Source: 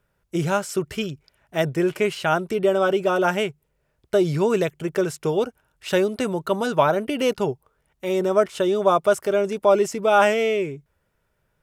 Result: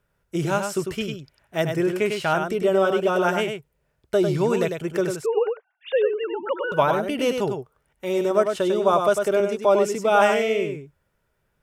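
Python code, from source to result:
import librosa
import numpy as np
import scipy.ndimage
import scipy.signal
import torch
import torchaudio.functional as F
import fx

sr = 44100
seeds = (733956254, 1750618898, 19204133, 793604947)

y = fx.sine_speech(x, sr, at=(5.16, 6.72))
y = y + 10.0 ** (-6.0 / 20.0) * np.pad(y, (int(99 * sr / 1000.0), 0))[:len(y)]
y = fx.band_squash(y, sr, depth_pct=40, at=(8.93, 9.4))
y = y * 10.0 ** (-1.5 / 20.0)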